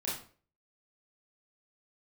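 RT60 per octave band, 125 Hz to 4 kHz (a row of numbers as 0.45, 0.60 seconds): 0.50, 0.45, 0.50, 0.40, 0.35, 0.35 seconds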